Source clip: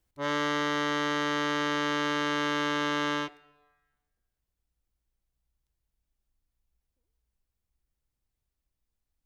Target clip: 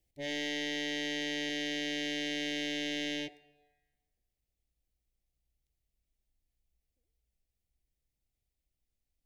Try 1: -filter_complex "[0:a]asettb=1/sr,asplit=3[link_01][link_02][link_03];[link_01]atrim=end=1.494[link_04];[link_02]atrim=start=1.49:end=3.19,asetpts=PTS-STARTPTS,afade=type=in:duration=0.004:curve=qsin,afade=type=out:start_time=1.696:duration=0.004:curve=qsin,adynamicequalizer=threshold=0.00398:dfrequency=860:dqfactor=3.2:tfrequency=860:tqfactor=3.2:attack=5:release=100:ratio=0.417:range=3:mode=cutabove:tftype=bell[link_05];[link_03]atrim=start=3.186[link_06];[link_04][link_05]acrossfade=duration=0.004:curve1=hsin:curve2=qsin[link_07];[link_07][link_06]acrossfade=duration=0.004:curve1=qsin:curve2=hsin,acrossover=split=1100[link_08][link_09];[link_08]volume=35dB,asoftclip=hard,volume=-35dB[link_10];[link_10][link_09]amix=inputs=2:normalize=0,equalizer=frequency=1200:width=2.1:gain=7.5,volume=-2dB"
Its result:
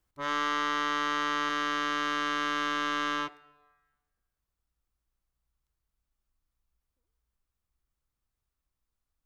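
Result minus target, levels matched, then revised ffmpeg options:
1,000 Hz band +17.5 dB
-filter_complex "[0:a]asettb=1/sr,asplit=3[link_01][link_02][link_03];[link_01]atrim=end=1.494[link_04];[link_02]atrim=start=1.49:end=3.19,asetpts=PTS-STARTPTS,afade=type=in:duration=0.004:curve=qsin,afade=type=out:start_time=1.696:duration=0.004:curve=qsin,adynamicequalizer=threshold=0.00398:dfrequency=860:dqfactor=3.2:tfrequency=860:tqfactor=3.2:attack=5:release=100:ratio=0.417:range=3:mode=cutabove:tftype=bell[link_05];[link_03]atrim=start=3.186[link_06];[link_04][link_05]acrossfade=duration=0.004:curve1=hsin:curve2=qsin[link_07];[link_07][link_06]acrossfade=duration=0.004:curve1=qsin:curve2=hsin,acrossover=split=1100[link_08][link_09];[link_08]volume=35dB,asoftclip=hard,volume=-35dB[link_10];[link_10][link_09]amix=inputs=2:normalize=0,asuperstop=centerf=1200:order=8:qfactor=1.1,equalizer=frequency=1200:width=2.1:gain=7.5,volume=-2dB"

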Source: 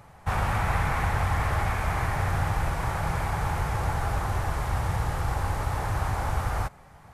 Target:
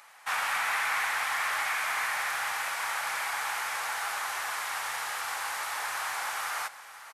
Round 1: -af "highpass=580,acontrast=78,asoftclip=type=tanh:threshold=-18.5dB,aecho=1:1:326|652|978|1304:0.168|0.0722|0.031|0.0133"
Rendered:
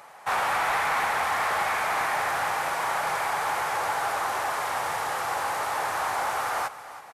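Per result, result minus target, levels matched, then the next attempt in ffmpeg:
500 Hz band +9.5 dB; echo 184 ms early
-af "highpass=1600,acontrast=78,asoftclip=type=tanh:threshold=-18.5dB,aecho=1:1:326|652|978|1304:0.168|0.0722|0.031|0.0133"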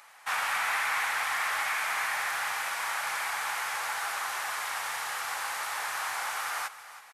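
echo 184 ms early
-af "highpass=1600,acontrast=78,asoftclip=type=tanh:threshold=-18.5dB,aecho=1:1:510|1020|1530|2040:0.168|0.0722|0.031|0.0133"

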